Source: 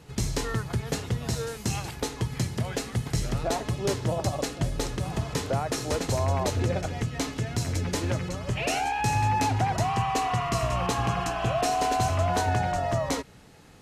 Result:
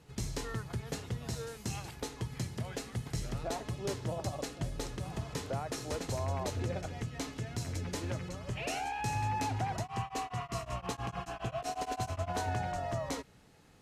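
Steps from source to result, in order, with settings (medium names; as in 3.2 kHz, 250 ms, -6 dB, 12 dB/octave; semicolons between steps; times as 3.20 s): 9.78–12.33 s: tremolo of two beating tones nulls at 4.3 Hz -> 11 Hz; trim -9 dB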